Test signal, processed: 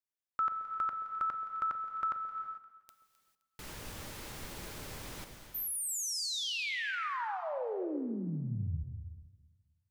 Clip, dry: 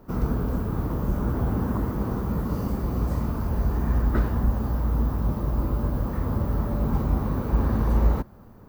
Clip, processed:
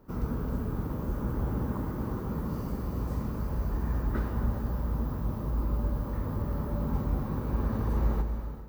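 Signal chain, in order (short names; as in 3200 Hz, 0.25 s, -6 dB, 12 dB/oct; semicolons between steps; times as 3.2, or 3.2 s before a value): notch 700 Hz, Q 12; echo with dull and thin repeats by turns 0.13 s, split 890 Hz, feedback 57%, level -11 dB; non-linear reverb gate 0.47 s flat, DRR 6 dB; gain -7 dB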